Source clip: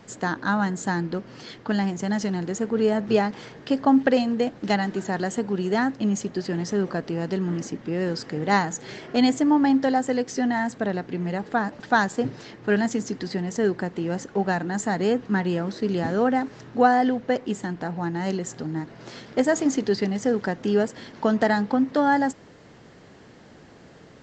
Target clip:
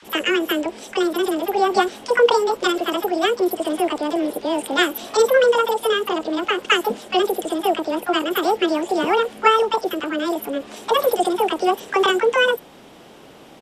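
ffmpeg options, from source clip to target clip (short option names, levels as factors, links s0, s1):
-filter_complex "[0:a]acrossover=split=620|4700[s0][s1][s2];[s0]adelay=40[s3];[s2]adelay=90[s4];[s3][s1][s4]amix=inputs=3:normalize=0,asetrate=78498,aresample=44100,aresample=32000,aresample=44100,volume=1.78"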